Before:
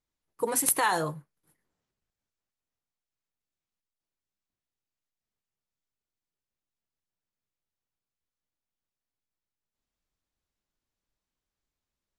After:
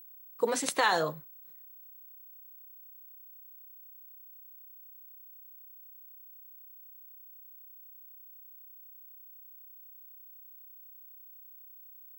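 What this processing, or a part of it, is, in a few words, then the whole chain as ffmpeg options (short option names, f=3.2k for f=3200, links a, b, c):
old television with a line whistle: -af "highpass=f=180:w=0.5412,highpass=f=180:w=1.3066,equalizer=f=320:t=q:w=4:g=-5,equalizer=f=580:t=q:w=4:g=3,equalizer=f=920:t=q:w=4:g=-4,equalizer=f=3.8k:t=q:w=4:g=5,lowpass=f=7.1k:w=0.5412,lowpass=f=7.1k:w=1.3066,aeval=exprs='val(0)+0.00316*sin(2*PI*15734*n/s)':c=same,volume=1dB"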